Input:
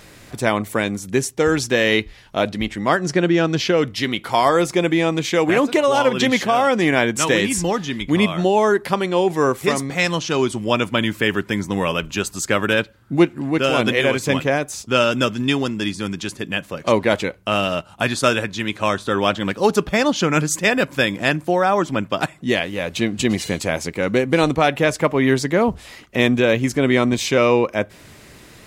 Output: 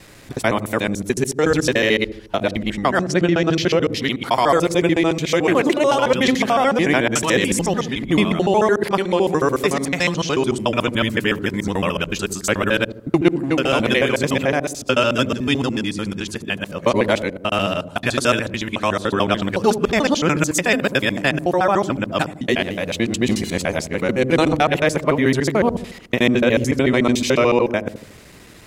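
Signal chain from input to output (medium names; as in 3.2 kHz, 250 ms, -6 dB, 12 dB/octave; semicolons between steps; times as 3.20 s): time reversed locally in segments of 73 ms; feedback echo behind a low-pass 76 ms, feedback 47%, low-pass 420 Hz, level -7 dB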